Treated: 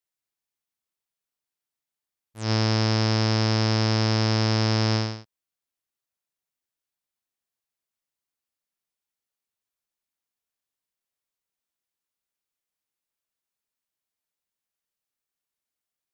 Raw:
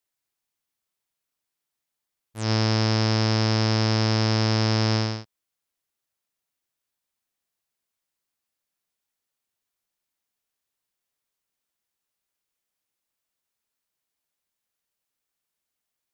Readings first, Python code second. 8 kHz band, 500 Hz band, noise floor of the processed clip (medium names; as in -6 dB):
no reading, -0.5 dB, under -85 dBFS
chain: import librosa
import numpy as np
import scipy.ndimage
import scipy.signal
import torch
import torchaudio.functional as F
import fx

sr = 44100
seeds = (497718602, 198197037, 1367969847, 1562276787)

y = fx.upward_expand(x, sr, threshold_db=-32.0, expansion=1.5)